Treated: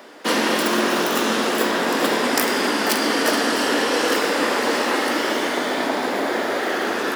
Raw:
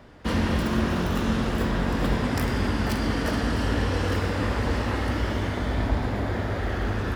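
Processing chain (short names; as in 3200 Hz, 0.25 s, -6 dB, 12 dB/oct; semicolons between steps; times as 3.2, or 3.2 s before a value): HPF 290 Hz 24 dB/oct; high shelf 4900 Hz +9 dB; gain +9 dB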